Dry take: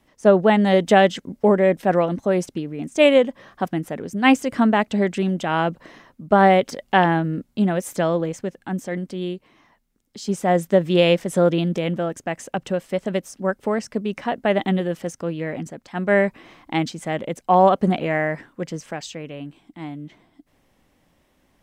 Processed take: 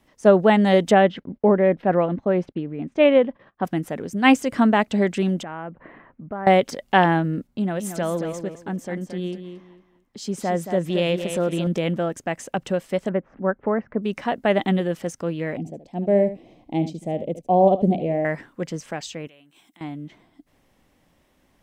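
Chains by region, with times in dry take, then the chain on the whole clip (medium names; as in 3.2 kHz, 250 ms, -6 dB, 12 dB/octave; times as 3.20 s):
0.91–3.65 s: gate -46 dBFS, range -23 dB + distance through air 360 m
5.43–6.47 s: inverse Chebyshev low-pass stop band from 8.7 kHz, stop band 70 dB + compression 2.5:1, threshold -35 dBFS
7.47–11.67 s: compression 1.5:1, threshold -28 dBFS + feedback delay 225 ms, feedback 24%, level -8.5 dB + tape noise reduction on one side only decoder only
13.09–14.03 s: low-pass 1.8 kHz 24 dB/octave + upward compressor, threshold -37 dBFS
15.57–18.25 s: FFT filter 690 Hz 0 dB, 1.4 kHz -28 dB, 2.4 kHz -12 dB + delay 74 ms -12.5 dB
19.27–19.81 s: compression 4:1, threshold -49 dBFS + tilt EQ +3.5 dB/octave + band-stop 4.6 kHz, Q 8.7
whole clip: none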